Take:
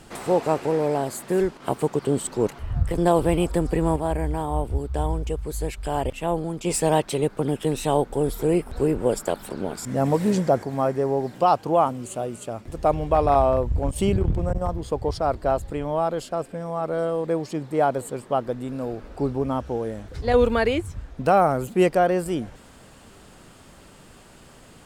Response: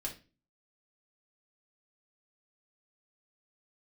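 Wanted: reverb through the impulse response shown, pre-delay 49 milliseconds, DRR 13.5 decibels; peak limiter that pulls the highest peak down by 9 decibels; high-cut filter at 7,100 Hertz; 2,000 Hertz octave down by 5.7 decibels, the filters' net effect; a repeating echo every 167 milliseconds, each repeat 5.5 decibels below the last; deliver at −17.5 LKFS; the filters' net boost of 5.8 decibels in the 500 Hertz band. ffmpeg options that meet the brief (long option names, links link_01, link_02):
-filter_complex "[0:a]lowpass=7100,equalizer=frequency=500:width_type=o:gain=7.5,equalizer=frequency=2000:width_type=o:gain=-8.5,alimiter=limit=-11.5dB:level=0:latency=1,aecho=1:1:167|334|501|668|835|1002|1169:0.531|0.281|0.149|0.079|0.0419|0.0222|0.0118,asplit=2[link_01][link_02];[1:a]atrim=start_sample=2205,adelay=49[link_03];[link_02][link_03]afir=irnorm=-1:irlink=0,volume=-13.5dB[link_04];[link_01][link_04]amix=inputs=2:normalize=0,volume=3.5dB"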